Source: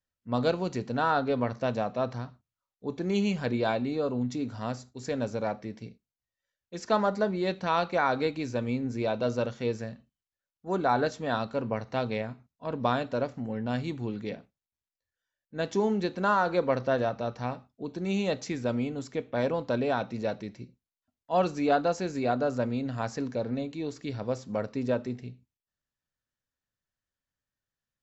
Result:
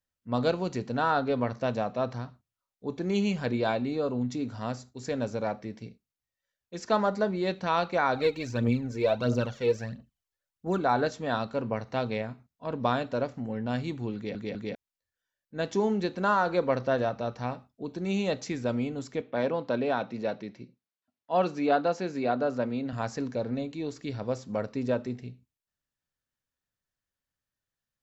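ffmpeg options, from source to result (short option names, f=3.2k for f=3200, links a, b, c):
-filter_complex "[0:a]asplit=3[a][b][c];[a]afade=t=out:st=8.14:d=0.02[d];[b]aphaser=in_gain=1:out_gain=1:delay=2.4:decay=0.61:speed=1.5:type=triangular,afade=t=in:st=8.14:d=0.02,afade=t=out:st=10.78:d=0.02[e];[c]afade=t=in:st=10.78:d=0.02[f];[d][e][f]amix=inputs=3:normalize=0,asettb=1/sr,asplit=3[g][h][i];[g]atrim=end=19.214[j];[h]atrim=start=19.21:end=22.93,asetpts=PTS-STARTPTS,afade=t=in:d=0.004:c=qsin,afade=t=out:st=3.716:d=0.004:c=qsin,highpass=150,lowpass=4.9k[k];[i]atrim=start=22.926[l];[j][k]acrossfade=d=0.004:c1=hsin:c2=qsin[m];[m][l]acrossfade=d=0.004:c1=qsin:c2=hsin,asplit=4[n][o][p][q];[n]atrim=end=14.352[r];[o]atrim=start=14.148:end=14.352[s];[p]atrim=start=14.148:end=14.352[t];[q]atrim=start=14.748[u];[r][s]acrossfade=d=0.004:c1=hsin:c2=hsin[v];[v][t]acrossfade=d=0.004:c1=hsin:c2=hsin[w];[w][u]acrossfade=d=0.004:c1=hsin:c2=hsin"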